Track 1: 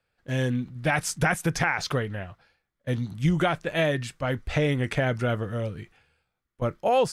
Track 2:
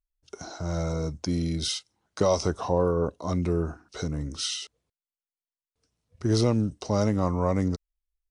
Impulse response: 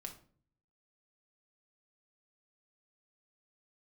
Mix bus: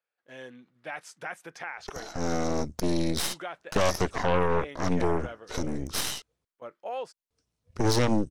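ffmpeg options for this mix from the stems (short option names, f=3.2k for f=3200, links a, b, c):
-filter_complex "[0:a]highpass=430,highshelf=f=6.1k:g=-11.5,volume=-11.5dB[a];[1:a]aeval=exprs='0.316*(cos(1*acos(clip(val(0)/0.316,-1,1)))-cos(1*PI/2))+0.0112*(cos(7*acos(clip(val(0)/0.316,-1,1)))-cos(7*PI/2))+0.0794*(cos(8*acos(clip(val(0)/0.316,-1,1)))-cos(8*PI/2))':c=same,adelay=1550,volume=0.5dB[b];[a][b]amix=inputs=2:normalize=0,alimiter=limit=-14.5dB:level=0:latency=1:release=90"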